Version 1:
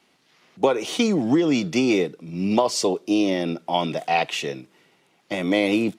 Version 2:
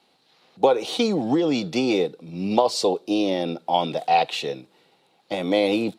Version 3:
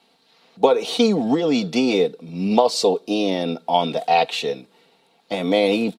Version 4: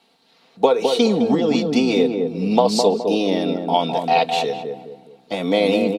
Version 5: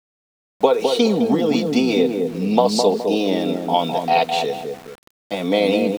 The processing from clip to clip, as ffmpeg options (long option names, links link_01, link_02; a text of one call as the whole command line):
ffmpeg -i in.wav -af "equalizer=frequency=500:width_type=o:width=0.33:gain=7,equalizer=frequency=800:width_type=o:width=0.33:gain=8,equalizer=frequency=2000:width_type=o:width=0.33:gain=-4,equalizer=frequency=4000:width_type=o:width=0.33:gain=10,equalizer=frequency=6300:width_type=o:width=0.33:gain=-4,volume=-3dB" out.wav
ffmpeg -i in.wav -af "aecho=1:1:4.4:0.49,volume=2dB" out.wav
ffmpeg -i in.wav -filter_complex "[0:a]asplit=2[link_01][link_02];[link_02]adelay=209,lowpass=frequency=810:poles=1,volume=-3dB,asplit=2[link_03][link_04];[link_04]adelay=209,lowpass=frequency=810:poles=1,volume=0.43,asplit=2[link_05][link_06];[link_06]adelay=209,lowpass=frequency=810:poles=1,volume=0.43,asplit=2[link_07][link_08];[link_08]adelay=209,lowpass=frequency=810:poles=1,volume=0.43,asplit=2[link_09][link_10];[link_10]adelay=209,lowpass=frequency=810:poles=1,volume=0.43,asplit=2[link_11][link_12];[link_12]adelay=209,lowpass=frequency=810:poles=1,volume=0.43[link_13];[link_01][link_03][link_05][link_07][link_09][link_11][link_13]amix=inputs=7:normalize=0" out.wav
ffmpeg -i in.wav -af "aeval=exprs='val(0)*gte(abs(val(0)),0.0158)':channel_layout=same" out.wav